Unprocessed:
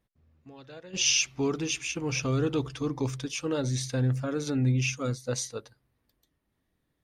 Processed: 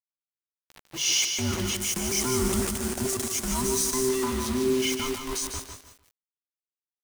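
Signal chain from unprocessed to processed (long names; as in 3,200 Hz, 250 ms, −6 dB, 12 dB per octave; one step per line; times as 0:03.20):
frequency inversion band by band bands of 500 Hz
bit reduction 6 bits
0:01.76–0:04.09: high shelf with overshoot 4,800 Hz +6.5 dB, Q 1.5
transient designer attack −4 dB, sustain +5 dB
repeating echo 150 ms, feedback 27%, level −7 dB
dynamic equaliser 9,200 Hz, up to +7 dB, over −49 dBFS, Q 2.8
feedback echo at a low word length 169 ms, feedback 55%, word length 7 bits, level −10 dB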